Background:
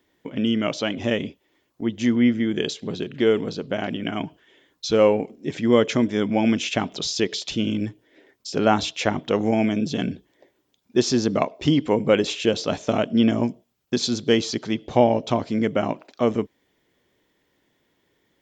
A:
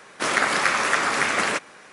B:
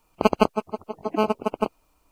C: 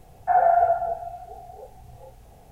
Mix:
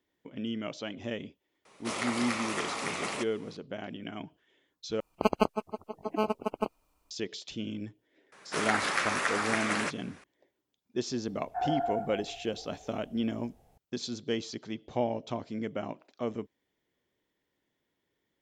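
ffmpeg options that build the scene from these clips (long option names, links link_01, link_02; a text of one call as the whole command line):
ffmpeg -i bed.wav -i cue0.wav -i cue1.wav -i cue2.wav -filter_complex "[1:a]asplit=2[link_01][link_02];[0:a]volume=-13dB[link_03];[link_01]equalizer=frequency=1600:width=3.7:gain=-12[link_04];[link_03]asplit=2[link_05][link_06];[link_05]atrim=end=5.004[link_07];[2:a]atrim=end=2.11,asetpts=PTS-STARTPTS,volume=-7dB[link_08];[link_06]atrim=start=7.106[link_09];[link_04]atrim=end=1.92,asetpts=PTS-STARTPTS,volume=-10dB,afade=type=in:duration=0.004:curve=hsin,afade=type=out:start_time=1.916:duration=0.004:curve=hsin,adelay=1650[link_10];[link_02]atrim=end=1.92,asetpts=PTS-STARTPTS,volume=-8.5dB,afade=type=in:duration=0.004:curve=hsin,afade=type=out:start_time=1.916:duration=0.004:curve=hsin,adelay=8320[link_11];[3:a]atrim=end=2.51,asetpts=PTS-STARTPTS,volume=-13dB,afade=type=in:duration=0.004:curve=hsin,afade=type=out:start_time=2.506:duration=0.004:curve=hsin,adelay=11270[link_12];[link_07][link_08]acrossfade=duration=0.004:curve1=hsin:curve2=hsin[link_13];[link_13][link_09]acrossfade=duration=0.004:curve1=hsin:curve2=hsin[link_14];[link_14][link_10][link_11][link_12]amix=inputs=4:normalize=0" out.wav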